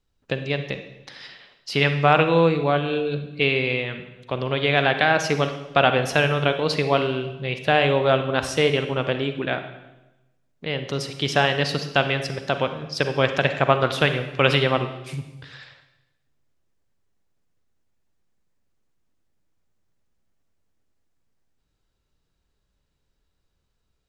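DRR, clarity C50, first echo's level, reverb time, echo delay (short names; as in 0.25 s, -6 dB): 8.0 dB, 9.0 dB, none, 1.0 s, none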